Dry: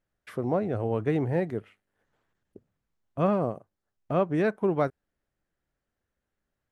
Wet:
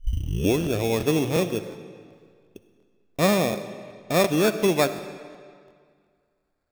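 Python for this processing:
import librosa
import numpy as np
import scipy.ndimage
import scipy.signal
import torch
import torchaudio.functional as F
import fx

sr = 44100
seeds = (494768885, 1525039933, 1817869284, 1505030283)

y = fx.tape_start_head(x, sr, length_s=0.78)
y = fx.peak_eq(y, sr, hz=130.0, db=-7.5, octaves=0.36)
y = fx.sample_hold(y, sr, seeds[0], rate_hz=3000.0, jitter_pct=0)
y = fx.rev_freeverb(y, sr, rt60_s=2.0, hf_ratio=0.85, predelay_ms=20, drr_db=11.0)
y = fx.buffer_crackle(y, sr, first_s=0.62, period_s=0.36, block=1024, kind='repeat')
y = y * 10.0 ** (4.5 / 20.0)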